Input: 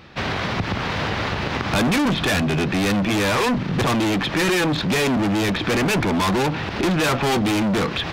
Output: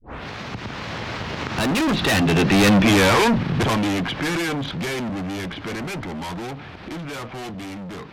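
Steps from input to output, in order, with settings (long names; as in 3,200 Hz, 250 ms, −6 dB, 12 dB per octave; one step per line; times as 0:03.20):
turntable start at the beginning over 0.31 s
source passing by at 0:02.76, 31 m/s, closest 16 metres
level +5.5 dB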